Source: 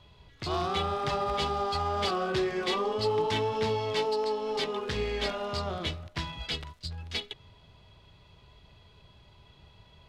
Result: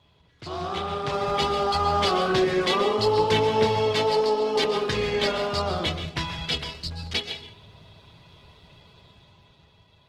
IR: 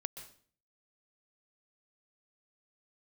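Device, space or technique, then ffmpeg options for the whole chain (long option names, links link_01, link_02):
far-field microphone of a smart speaker: -filter_complex "[1:a]atrim=start_sample=2205[link_01];[0:a][link_01]afir=irnorm=-1:irlink=0,highpass=83,dynaudnorm=framelen=170:gausssize=13:maxgain=8.5dB" -ar 48000 -c:a libopus -b:a 16k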